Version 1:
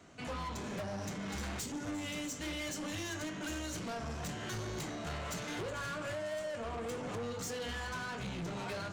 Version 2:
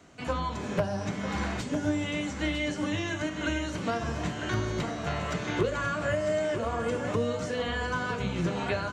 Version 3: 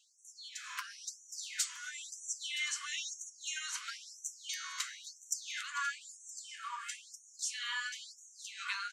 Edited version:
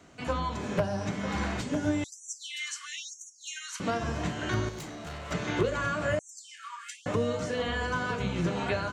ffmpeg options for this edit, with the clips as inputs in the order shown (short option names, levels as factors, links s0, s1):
-filter_complex "[2:a]asplit=2[s0][s1];[1:a]asplit=4[s2][s3][s4][s5];[s2]atrim=end=2.042[s6];[s0]atrim=start=2.038:end=3.802[s7];[s3]atrim=start=3.798:end=4.692[s8];[0:a]atrim=start=4.688:end=5.312[s9];[s4]atrim=start=5.308:end=6.192[s10];[s1]atrim=start=6.188:end=7.062[s11];[s5]atrim=start=7.058[s12];[s6][s7]acrossfade=d=0.004:c1=hsin:c2=hsin[s13];[s13][s8]acrossfade=d=0.004:c1=hsin:c2=hsin[s14];[s14][s9]acrossfade=d=0.004:c1=hsin:c2=hsin[s15];[s15][s10]acrossfade=d=0.004:c1=hsin:c2=hsin[s16];[s16][s11]acrossfade=d=0.004:c1=hsin:c2=hsin[s17];[s17][s12]acrossfade=d=0.004:c1=hsin:c2=hsin"